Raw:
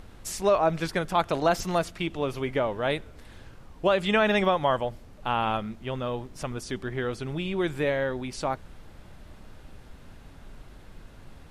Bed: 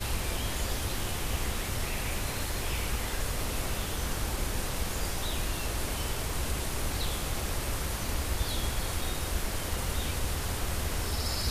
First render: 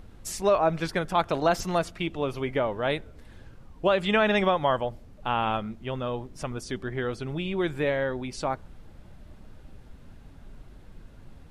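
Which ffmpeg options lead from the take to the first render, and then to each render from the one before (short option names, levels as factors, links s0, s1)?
-af "afftdn=nr=6:nf=-49"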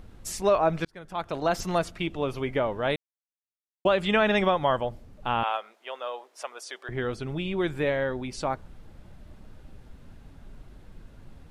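-filter_complex "[0:a]asettb=1/sr,asplit=3[s0][s1][s2];[s0]atrim=end=5.434[s3];[s1]atrim=start=5.43:end=6.89,asetpts=PTS-STARTPTS,afade=t=in:d=0.004:c=qsin,afade=t=out:st=1.456:d=0.004:c=qsin,highpass=f=540:w=0.5412,highpass=f=540:w=1.3066[s4];[s2]atrim=start=6.886[s5];[s3][s4]acrossfade=d=0.004:c1=hsin:c2=qsin[s6];[s6][s5]acrossfade=d=0.004:c1=qsin:c2=hsin,asplit=4[s7][s8][s9][s10];[s7]atrim=end=0.85,asetpts=PTS-STARTPTS,afade=t=out:st=0.846:d=0.004:c=hsin[s11];[s8]atrim=start=0.85:end=2.96,asetpts=PTS-STARTPTS,afade=t=in:d=0.84,afade=t=out:st=2.106:d=0.004:c=hsin[s12];[s9]atrim=start=2.96:end=3.85,asetpts=PTS-STARTPTS,volume=0[s13];[s10]atrim=start=3.85,asetpts=PTS-STARTPTS,afade=t=in:d=0.004:c=hsin[s14];[s11][s12][s13][s14]concat=n=4:v=0:a=1"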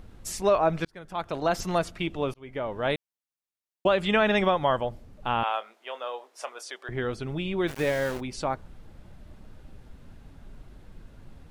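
-filter_complex "[0:a]asettb=1/sr,asplit=3[s0][s1][s2];[s0]atrim=end=5.544[s3];[s1]atrim=start=5.54:end=6.7,asetpts=PTS-STARTPTS,afade=t=in:d=0.004:c=qsin,afade=t=out:st=1.156:d=0.004:c=qsin,asplit=2[s4][s5];[s5]adelay=27,volume=0.251[s6];[s4][s6]amix=inputs=2:normalize=0,atrim=end_sample=51156[s7];[s2]atrim=start=6.696[s8];[s3][s7]acrossfade=d=0.004:c1=hsin:c2=qsin[s9];[s9][s8]acrossfade=d=0.004:c1=qsin:c2=hsin,asplit=3[s10][s11][s12];[s10]afade=t=out:st=7.67:d=0.02[s13];[s11]aeval=exprs='val(0)*gte(abs(val(0)),0.0224)':c=same,afade=t=in:st=7.67:d=0.02,afade=t=out:st=8.19:d=0.02[s14];[s12]afade=t=in:st=8.19:d=0.02[s15];[s13][s14][s15]amix=inputs=3:normalize=0,asplit=2[s16][s17];[s16]atrim=end=2.34,asetpts=PTS-STARTPTS,afade=t=out:st=2.336:d=0.004:c=hsin[s18];[s17]atrim=start=2.34,asetpts=PTS-STARTPTS,afade=t=in:d=0.52[s19];[s18][s19]concat=n=2:v=0:a=1"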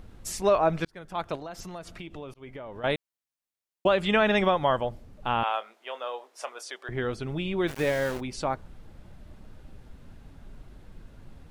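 -filter_complex "[0:a]asettb=1/sr,asplit=3[s0][s1][s2];[s0]atrim=end=1.354[s3];[s1]atrim=start=1.35:end=2.84,asetpts=PTS-STARTPTS,afade=t=in:d=0.004:c=qsin,afade=t=out:st=1.486:d=0.004:c=qsin,acompressor=threshold=0.0141:ratio=5:attack=3.2:release=140:knee=1:detection=peak[s4];[s2]atrim=start=2.836[s5];[s3][s4]acrossfade=d=0.004:c1=hsin:c2=qsin[s6];[s6][s5]acrossfade=d=0.004:c1=qsin:c2=hsin"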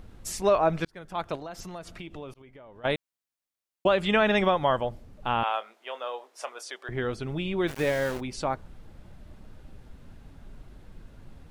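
-filter_complex "[0:a]asplit=3[s0][s1][s2];[s0]atrim=end=2.422[s3];[s1]atrim=start=2.418:end=2.852,asetpts=PTS-STARTPTS,volume=0.376[s4];[s2]atrim=start=2.848[s5];[s3][s4]acrossfade=d=0.004:c1=hsin:c2=hsin[s6];[s6][s5]acrossfade=d=0.004:c1=hsin:c2=hsin"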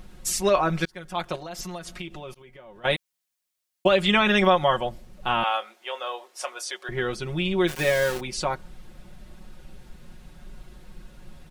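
-af "highshelf=f=2100:g=7.5,aecho=1:1:5.5:0.72"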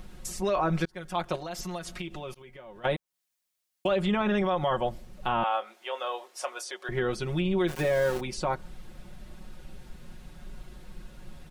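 -filter_complex "[0:a]acrossover=split=1300[s0][s1];[s0]alimiter=limit=0.112:level=0:latency=1:release=30[s2];[s1]acompressor=threshold=0.0141:ratio=10[s3];[s2][s3]amix=inputs=2:normalize=0"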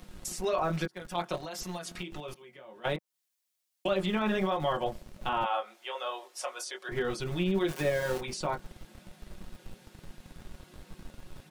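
-filter_complex "[0:a]acrossover=split=140|2300[s0][s1][s2];[s0]acrusher=bits=5:dc=4:mix=0:aa=0.000001[s3];[s1]flanger=delay=19.5:depth=3.8:speed=1.3[s4];[s3][s4][s2]amix=inputs=3:normalize=0"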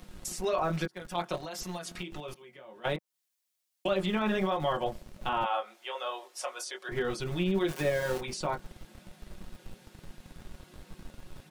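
-af anull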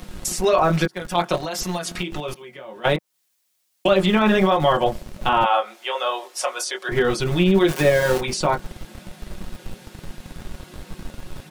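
-af "volume=3.98"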